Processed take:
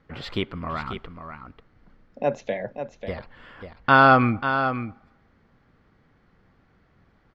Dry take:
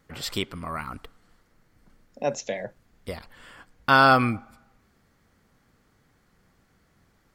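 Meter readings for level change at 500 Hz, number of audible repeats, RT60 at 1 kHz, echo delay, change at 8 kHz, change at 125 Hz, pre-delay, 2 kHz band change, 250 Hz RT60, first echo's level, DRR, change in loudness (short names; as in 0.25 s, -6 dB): +3.0 dB, 1, none, 0.541 s, under -15 dB, +4.0 dB, none, +2.0 dB, none, -9.0 dB, none, +1.0 dB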